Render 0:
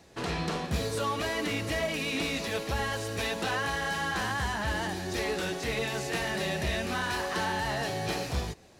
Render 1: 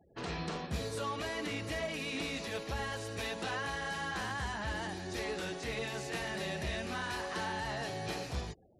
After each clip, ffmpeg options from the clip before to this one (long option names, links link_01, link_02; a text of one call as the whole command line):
ffmpeg -i in.wav -af "afftfilt=real='re*gte(hypot(re,im),0.00355)':imag='im*gte(hypot(re,im),0.00355)':win_size=1024:overlap=0.75,volume=-6.5dB" out.wav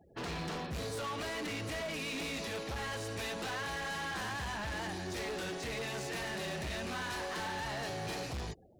ffmpeg -i in.wav -af "asoftclip=type=hard:threshold=-39dB,volume=3dB" out.wav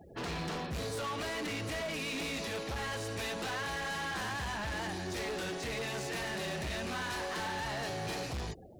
ffmpeg -i in.wav -af "alimiter=level_in=19dB:limit=-24dB:level=0:latency=1:release=22,volume=-19dB,volume=8.5dB" out.wav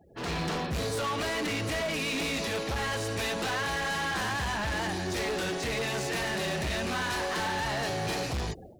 ffmpeg -i in.wav -af "dynaudnorm=framelen=140:gausssize=3:maxgain=11.5dB,volume=-5.5dB" out.wav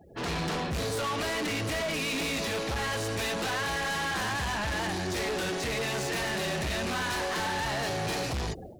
ffmpeg -i in.wav -af "asoftclip=type=tanh:threshold=-33dB,volume=4.5dB" out.wav